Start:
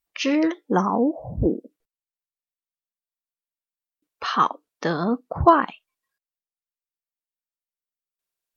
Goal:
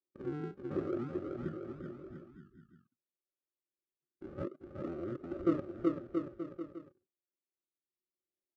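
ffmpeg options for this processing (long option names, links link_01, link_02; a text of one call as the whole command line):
ffmpeg -i in.wav -filter_complex "[0:a]acrusher=samples=25:mix=1:aa=0.000001:lfo=1:lforange=25:lforate=0.55,asplit=3[link_01][link_02][link_03];[link_01]bandpass=frequency=730:width_type=q:width=8,volume=0dB[link_04];[link_02]bandpass=frequency=1090:width_type=q:width=8,volume=-6dB[link_05];[link_03]bandpass=frequency=2440:width_type=q:width=8,volume=-9dB[link_06];[link_04][link_05][link_06]amix=inputs=3:normalize=0,equalizer=frequency=120:width_type=o:width=2.4:gain=7.5,asplit=2[link_07][link_08];[link_08]aecho=0:1:380|684|927.2|1122|1277:0.631|0.398|0.251|0.158|0.1[link_09];[link_07][link_09]amix=inputs=2:normalize=0,asetrate=22050,aresample=44100,atempo=2,volume=-5.5dB" out.wav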